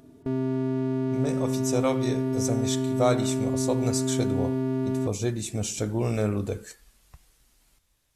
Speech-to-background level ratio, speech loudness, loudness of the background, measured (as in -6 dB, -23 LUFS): -2.0 dB, -29.5 LUFS, -27.5 LUFS